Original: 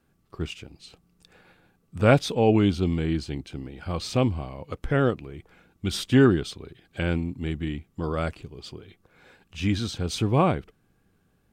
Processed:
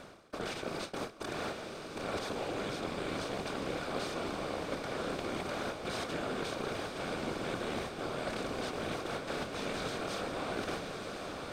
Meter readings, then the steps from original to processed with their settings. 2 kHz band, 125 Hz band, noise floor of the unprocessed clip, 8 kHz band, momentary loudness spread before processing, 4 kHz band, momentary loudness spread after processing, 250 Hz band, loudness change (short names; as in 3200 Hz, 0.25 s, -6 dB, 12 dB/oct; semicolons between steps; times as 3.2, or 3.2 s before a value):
-5.5 dB, -19.0 dB, -67 dBFS, -5.0 dB, 20 LU, -5.5 dB, 3 LU, -14.0 dB, -12.5 dB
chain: per-bin compression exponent 0.2; gate with hold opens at -8 dBFS; low shelf 300 Hz -11.5 dB; reverse; compressor 5:1, threshold -34 dBFS, peak gain reduction 20 dB; reverse; whisperiser; diffused feedback echo 1.076 s, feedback 61%, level -5.5 dB; gain -3 dB